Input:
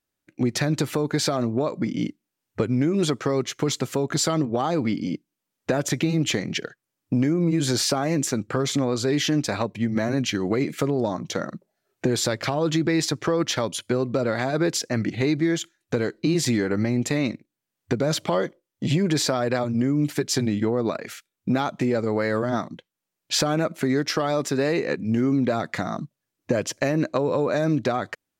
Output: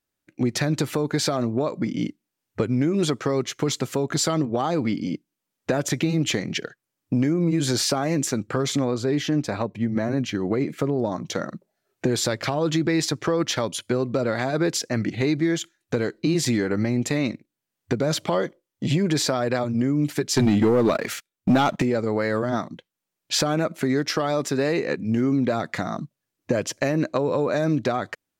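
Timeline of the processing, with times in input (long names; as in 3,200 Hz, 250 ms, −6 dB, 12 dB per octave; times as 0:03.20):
0:08.91–0:11.12: high-shelf EQ 2,000 Hz −8 dB
0:20.37–0:21.82: leveller curve on the samples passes 2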